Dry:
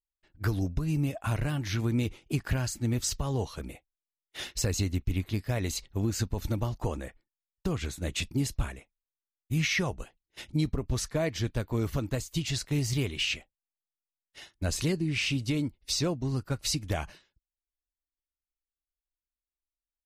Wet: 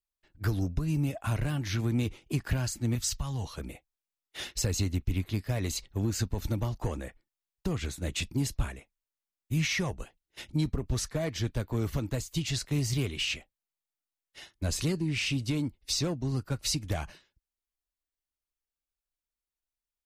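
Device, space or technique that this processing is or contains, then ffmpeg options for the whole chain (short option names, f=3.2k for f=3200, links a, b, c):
one-band saturation: -filter_complex "[0:a]asettb=1/sr,asplit=3[a][b][c];[a]atrim=end=2.954[d];[b]atrim=start=2.95:end=3.44,asetpts=PTS-STARTPTS,afade=t=in:d=0.004:c=qsin,afade=t=out:st=0.486:d=0.004:c=qsin,equalizer=f=420:w=0.95:g=-14.5[e];[c]atrim=start=3.436[f];[d][e]acrossfade=d=0.004:c1=hsin:c2=qsin[g];[g][f]acrossfade=d=0.004:c1=qsin:c2=hsin,acrossover=split=230|3700[h][i][j];[i]asoftclip=type=tanh:threshold=-28.5dB[k];[h][k][j]amix=inputs=3:normalize=0"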